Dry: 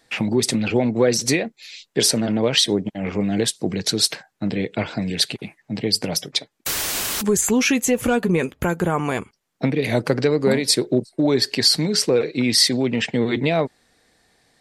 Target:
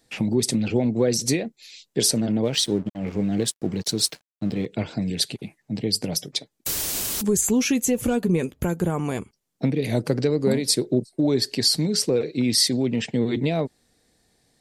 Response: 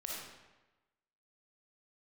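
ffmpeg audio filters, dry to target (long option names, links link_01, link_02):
-filter_complex "[0:a]equalizer=frequency=1500:width=0.43:gain=-10,asettb=1/sr,asplit=3[link_01][link_02][link_03];[link_01]atrim=end=2.454[link_04];[link_02]atrim=start=2.45:end=4.66,asetpts=PTS-STARTPTS,afade=type=in:duration=0.004:curve=qsin,afade=type=out:start_time=2.206:duration=0.004:curve=qsin,aeval=exprs='sgn(val(0))*max(abs(val(0))-0.00631,0)':channel_layout=same[link_05];[link_03]atrim=start=4.656[link_06];[link_04][link_05]acrossfade=duration=0.004:curve1=hsin:curve2=qsin[link_07];[link_07][link_06]acrossfade=duration=0.004:curve1=qsin:curve2=hsin"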